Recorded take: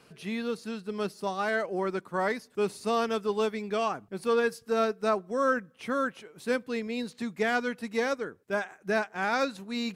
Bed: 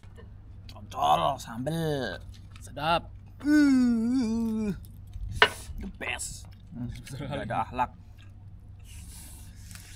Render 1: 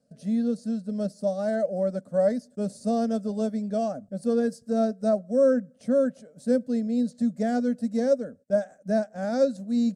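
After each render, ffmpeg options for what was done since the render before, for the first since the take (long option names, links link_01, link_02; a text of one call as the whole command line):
ffmpeg -i in.wav -af "agate=range=-14dB:threshold=-52dB:ratio=16:detection=peak,firequalizer=gain_entry='entry(110,0);entry(250,11);entry(350,-15);entry(570,13);entry(930,-19);entry(1600,-10);entry(2400,-21);entry(4600,-4);entry(8500,2);entry(12000,-12)':delay=0.05:min_phase=1" out.wav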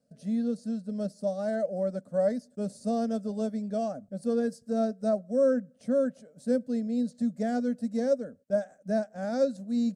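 ffmpeg -i in.wav -af "volume=-3.5dB" out.wav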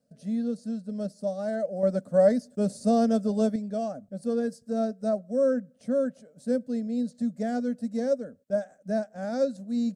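ffmpeg -i in.wav -filter_complex "[0:a]asettb=1/sr,asplit=3[link_01][link_02][link_03];[link_01]atrim=end=1.834[link_04];[link_02]atrim=start=1.83:end=3.56,asetpts=PTS-STARTPTS,afade=type=in:duration=0.004:curve=qsin,afade=type=out:start_time=1.726:duration=0.004:curve=qsin,acontrast=63[link_05];[link_03]atrim=start=3.556[link_06];[link_04][link_05]acrossfade=duration=0.004:curve1=hsin:curve2=qsin[link_07];[link_07][link_06]acrossfade=duration=0.004:curve1=qsin:curve2=hsin" out.wav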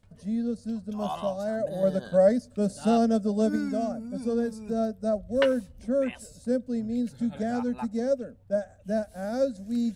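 ffmpeg -i in.wav -i bed.wav -filter_complex "[1:a]volume=-11dB[link_01];[0:a][link_01]amix=inputs=2:normalize=0" out.wav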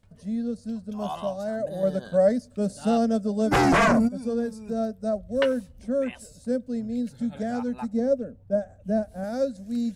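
ffmpeg -i in.wav -filter_complex "[0:a]asplit=3[link_01][link_02][link_03];[link_01]afade=type=out:start_time=3.51:duration=0.02[link_04];[link_02]aeval=exprs='0.168*sin(PI/2*5.62*val(0)/0.168)':channel_layout=same,afade=type=in:start_time=3.51:duration=0.02,afade=type=out:start_time=4.07:duration=0.02[link_05];[link_03]afade=type=in:start_time=4.07:duration=0.02[link_06];[link_04][link_05][link_06]amix=inputs=3:normalize=0,asettb=1/sr,asplit=3[link_07][link_08][link_09];[link_07]atrim=end=7.934[link_10];[link_08]atrim=start=7.93:end=9.24,asetpts=PTS-STARTPTS,afade=type=in:duration=0.004:curve=qsin,afade=type=out:start_time=1.306:duration=0.004:curve=qsin,tiltshelf=frequency=970:gain=5[link_11];[link_09]atrim=start=9.236[link_12];[link_10][link_11]acrossfade=duration=0.004:curve1=hsin:curve2=qsin[link_13];[link_13][link_12]acrossfade=duration=0.004:curve1=qsin:curve2=hsin" out.wav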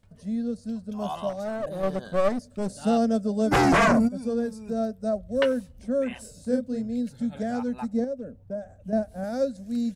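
ffmpeg -i in.wav -filter_complex "[0:a]asettb=1/sr,asplit=3[link_01][link_02][link_03];[link_01]atrim=end=1.294[link_04];[link_02]atrim=start=1.29:end=2.75,asetpts=PTS-STARTPTS,afade=type=in:duration=0.004:curve=qsin,afade=type=out:start_time=1.456:duration=0.004:curve=qsin,aeval=exprs='clip(val(0),-1,0.0299)':channel_layout=same[link_05];[link_03]atrim=start=2.746[link_06];[link_04][link_05]acrossfade=duration=0.004:curve1=hsin:curve2=qsin[link_07];[link_07][link_06]acrossfade=duration=0.004:curve1=qsin:curve2=hsin,asplit=3[link_08][link_09][link_10];[link_08]afade=type=out:start_time=6.1:duration=0.02[link_11];[link_09]asplit=2[link_12][link_13];[link_13]adelay=32,volume=-3.5dB[link_14];[link_12][link_14]amix=inputs=2:normalize=0,afade=type=in:start_time=6.1:duration=0.02,afade=type=out:start_time=6.81:duration=0.02[link_15];[link_10]afade=type=in:start_time=6.81:duration=0.02[link_16];[link_11][link_15][link_16]amix=inputs=3:normalize=0,asettb=1/sr,asplit=3[link_17][link_18][link_19];[link_17]atrim=end=8.044[link_20];[link_18]atrim=start=8.04:end=8.93,asetpts=PTS-STARTPTS,afade=type=in:duration=0.004:curve=qsin,afade=type=out:start_time=0.886:duration=0.004:curve=qsin,acompressor=threshold=-32dB:ratio=2.5:attack=3.2:release=140:knee=1:detection=peak[link_21];[link_19]atrim=start=8.926[link_22];[link_20][link_21]acrossfade=duration=0.004:curve1=hsin:curve2=qsin[link_23];[link_23][link_22]acrossfade=duration=0.004:curve1=qsin:curve2=hsin" out.wav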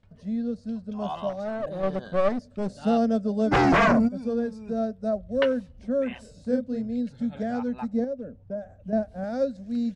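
ffmpeg -i in.wav -af "lowpass=4400" out.wav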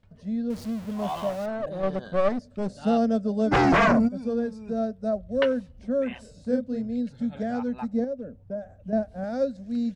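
ffmpeg -i in.wav -filter_complex "[0:a]asettb=1/sr,asplit=3[link_01][link_02][link_03];[link_01]atrim=end=0.504[link_04];[link_02]atrim=start=0.5:end=1.46,asetpts=PTS-STARTPTS,afade=type=in:duration=0.004:curve=qsin,afade=type=out:start_time=0.956:duration=0.004:curve=qsin,aeval=exprs='val(0)+0.5*0.015*sgn(val(0))':channel_layout=same[link_05];[link_03]atrim=start=1.456[link_06];[link_04][link_05]acrossfade=duration=0.004:curve1=hsin:curve2=qsin[link_07];[link_07][link_06]acrossfade=duration=0.004:curve1=qsin:curve2=hsin" out.wav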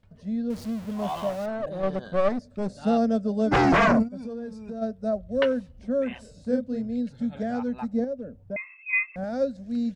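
ffmpeg -i in.wav -filter_complex "[0:a]asettb=1/sr,asplit=3[link_01][link_02][link_03];[link_01]atrim=end=2.314[link_04];[link_02]atrim=start=2.31:end=3.1,asetpts=PTS-STARTPTS,afade=type=in:duration=0.004:curve=qsin,afade=type=out:start_time=0.786:duration=0.004:curve=qsin,bandreject=frequency=3000:width=12[link_05];[link_03]atrim=start=3.096[link_06];[link_04][link_05]acrossfade=duration=0.004:curve1=hsin:curve2=qsin[link_07];[link_07][link_06]acrossfade=duration=0.004:curve1=qsin:curve2=hsin,asplit=3[link_08][link_09][link_10];[link_08]afade=type=out:start_time=4.02:duration=0.02[link_11];[link_09]acompressor=threshold=-31dB:ratio=6:attack=3.2:release=140:knee=1:detection=peak,afade=type=in:start_time=4.02:duration=0.02,afade=type=out:start_time=4.81:duration=0.02[link_12];[link_10]afade=type=in:start_time=4.81:duration=0.02[link_13];[link_11][link_12][link_13]amix=inputs=3:normalize=0,asettb=1/sr,asplit=3[link_14][link_15][link_16];[link_14]atrim=end=8.564[link_17];[link_15]atrim=start=8.56:end=9.16,asetpts=PTS-STARTPTS,afade=type=in:duration=0.004:curve=qsin,afade=type=out:start_time=0.596:duration=0.004:curve=qsin,lowpass=frequency=2300:width_type=q:width=0.5098,lowpass=frequency=2300:width_type=q:width=0.6013,lowpass=frequency=2300:width_type=q:width=0.9,lowpass=frequency=2300:width_type=q:width=2.563,afreqshift=-2700[link_18];[link_16]atrim=start=9.156[link_19];[link_17][link_18]acrossfade=duration=0.004:curve1=hsin:curve2=qsin[link_20];[link_20][link_19]acrossfade=duration=0.004:curve1=qsin:curve2=hsin" out.wav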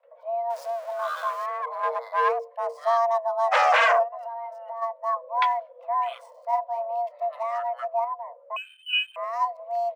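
ffmpeg -i in.wav -filter_complex "[0:a]afreqshift=460,acrossover=split=100|2800[link_01][link_02][link_03];[link_03]aeval=exprs='sgn(val(0))*max(abs(val(0))-0.00141,0)':channel_layout=same[link_04];[link_01][link_02][link_04]amix=inputs=3:normalize=0" out.wav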